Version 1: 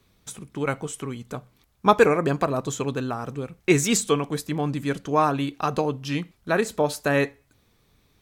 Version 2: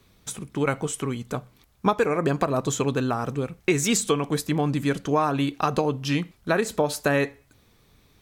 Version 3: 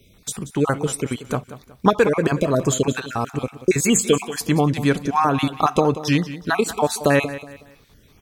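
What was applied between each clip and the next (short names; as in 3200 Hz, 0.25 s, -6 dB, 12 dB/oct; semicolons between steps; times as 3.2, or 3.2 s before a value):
compressor 6:1, threshold -22 dBFS, peak gain reduction 11.5 dB; gain +4 dB
random spectral dropouts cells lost 29%; feedback echo 0.184 s, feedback 33%, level -14.5 dB; gain +6 dB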